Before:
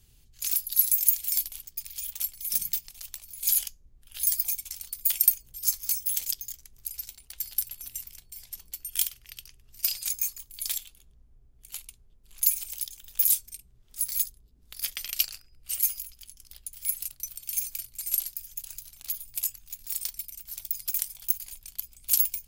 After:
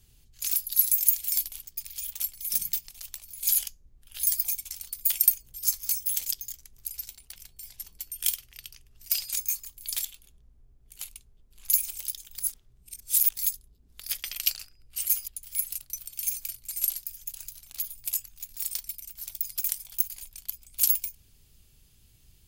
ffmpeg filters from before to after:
-filter_complex "[0:a]asplit=5[s0][s1][s2][s3][s4];[s0]atrim=end=7.362[s5];[s1]atrim=start=8.088:end=13.112[s6];[s2]atrim=start=13.108:end=14.102,asetpts=PTS-STARTPTS,areverse[s7];[s3]atrim=start=14.098:end=16.012[s8];[s4]atrim=start=16.578[s9];[s5][s6]acrossfade=d=0.004:c1=hsin:c2=hsin[s10];[s10][s7]acrossfade=d=0.004:c1=hsin:c2=hsin[s11];[s11][s8]acrossfade=d=0.004:c1=hsin:c2=hsin[s12];[s12][s9]acrossfade=d=0.004:c1=hsin:c2=hsin"

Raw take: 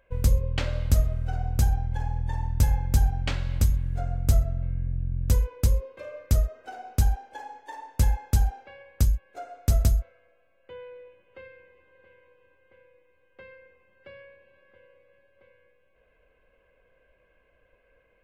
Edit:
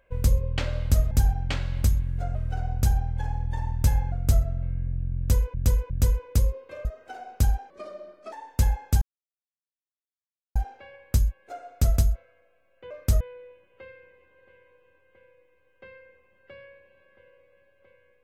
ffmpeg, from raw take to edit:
-filter_complex "[0:a]asplit=12[s0][s1][s2][s3][s4][s5][s6][s7][s8][s9][s10][s11];[s0]atrim=end=1.112[s12];[s1]atrim=start=2.878:end=4.122[s13];[s2]atrim=start=1.108:end=2.882[s14];[s3]atrim=start=4.118:end=5.542[s15];[s4]atrim=start=5.178:end=5.542[s16];[s5]atrim=start=5.178:end=6.132[s17];[s6]atrim=start=6.428:end=7.284[s18];[s7]atrim=start=7.28:end=7.73,asetpts=PTS-STARTPTS,asetrate=31752,aresample=44100,atrim=end_sample=27562,asetpts=PTS-STARTPTS[s19];[s8]atrim=start=7.726:end=8.42,asetpts=PTS-STARTPTS,afade=t=out:st=0.69:d=0.004:c=hsin,apad=pad_dur=1.54[s20];[s9]atrim=start=8.42:end=10.772,asetpts=PTS-STARTPTS,afade=t=in:d=0.004:c=hsin[s21];[s10]atrim=start=6.128:end=6.432[s22];[s11]atrim=start=10.768[s23];[s12][s13]acrossfade=d=0.004:c1=hsin:c2=hsin[s24];[s24][s14]acrossfade=d=0.004:c1=hsin:c2=hsin[s25];[s25][s15]acrossfade=d=0.004:c1=hsin:c2=hsin[s26];[s26][s16]acrossfade=d=0.004:c1=hsin:c2=hsin[s27];[s27][s17]acrossfade=d=0.004:c1=hsin:c2=hsin[s28];[s28][s18]acrossfade=d=0.004:c1=hsin:c2=hsin[s29];[s29][s19]acrossfade=d=0.004:c1=hsin:c2=hsin[s30];[s20][s21]concat=n=2:v=0:a=1[s31];[s30][s31]acrossfade=d=0.004:c1=hsin:c2=hsin[s32];[s32][s22]acrossfade=d=0.004:c1=hsin:c2=hsin[s33];[s33][s23]acrossfade=d=0.004:c1=hsin:c2=hsin"

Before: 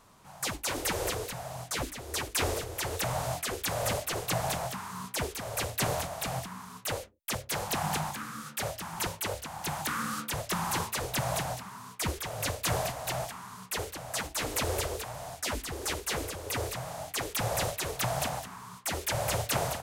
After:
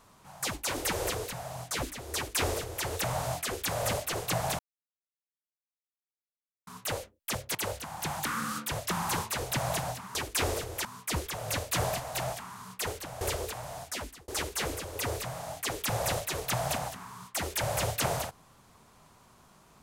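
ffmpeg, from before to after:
-filter_complex "[0:a]asplit=8[s0][s1][s2][s3][s4][s5][s6][s7];[s0]atrim=end=4.59,asetpts=PTS-STARTPTS,afade=t=out:st=4.586:d=0.004:c=hsin[s8];[s1]atrim=start=4.59:end=6.67,asetpts=PTS-STARTPTS,volume=0[s9];[s2]atrim=start=6.67:end=7.552,asetpts=PTS-STARTPTS,afade=t=in:d=0.004:c=hsin[s10];[s3]atrim=start=9.168:end=11.772[s11];[s4]atrim=start=2.148:end=2.852[s12];[s5]atrim=start=11.768:end=14.132[s13];[s6]atrim=start=14.718:end=15.79,asetpts=PTS-STARTPTS,afade=t=out:st=0.592:d=0.48[s14];[s7]atrim=start=15.79,asetpts=PTS-STARTPTS,afade=t=in:d=0.004:c=hsin[s15];[s8][s9][s10]concat=n=3:v=0:a=1[s16];[s16][s11]acrossfade=d=0.004:c1=hsin:c2=hsin[s17];[s17][s12]acrossfade=d=0.004:c1=hsin:c2=hsin[s18];[s18][s13]acrossfade=d=0.004:c1=hsin:c2=hsin[s19];[s14][s15]concat=n=2:v=0:a=1[s20];[s19][s20]acrossfade=d=0.004:c1=hsin:c2=hsin"

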